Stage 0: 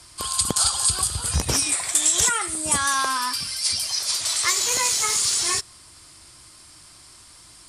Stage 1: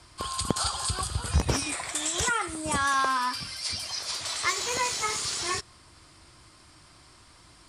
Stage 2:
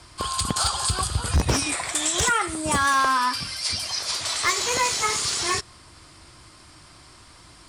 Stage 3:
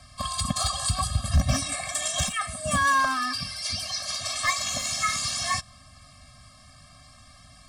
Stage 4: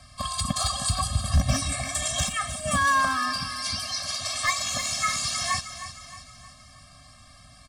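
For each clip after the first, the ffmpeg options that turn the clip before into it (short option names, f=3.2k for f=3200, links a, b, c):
-af "aemphasis=mode=reproduction:type=75kf"
-af "volume=20dB,asoftclip=hard,volume=-20dB,volume=5.5dB"
-af "afftfilt=real='re*eq(mod(floor(b*sr/1024/260),2),0)':imag='im*eq(mod(floor(b*sr/1024/260),2),0)':win_size=1024:overlap=0.75"
-af "aecho=1:1:312|624|936|1248|1560:0.251|0.126|0.0628|0.0314|0.0157"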